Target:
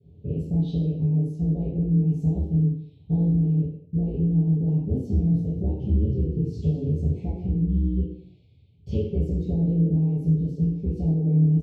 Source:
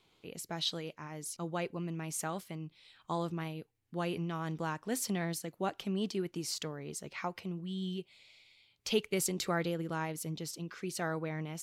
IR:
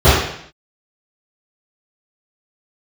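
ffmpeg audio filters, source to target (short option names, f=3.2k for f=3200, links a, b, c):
-filter_complex "[0:a]firequalizer=gain_entry='entry(140,0);entry(740,-24);entry(4600,-29)':delay=0.05:min_phase=1,acompressor=threshold=-47dB:ratio=6,asuperstop=centerf=1400:order=8:qfactor=0.89,tremolo=f=120:d=0.889,highpass=59,asettb=1/sr,asplit=3[a][b][c];[a]atrim=end=5.124[d];[b]atrim=start=5.12:end=7.57,asetpts=PTS-STARTPTS,afade=t=in:d=0.004:c=qsin,afade=t=out:st=2.446:d=0.004:c=qsin,asplit=4[e][f][g][h];[f]adelay=194,afreqshift=-64,volume=-12dB[i];[g]adelay=388,afreqshift=-128,volume=-22.2dB[j];[h]adelay=582,afreqshift=-192,volume=-32.3dB[k];[e][i][j][k]amix=inputs=4:normalize=0,atrim=end_sample=108045[l];[c]atrim=start=7.566[m];[d][l]acrossfade=d=0.004:c1=hsin:c2=qsin[n];[n][m]acrossfade=d=0.004:c1=qsin:c2=hsin[o];[1:a]atrim=start_sample=2205,asetrate=48510,aresample=44100[p];[o][p]afir=irnorm=-1:irlink=0,volume=-6.5dB"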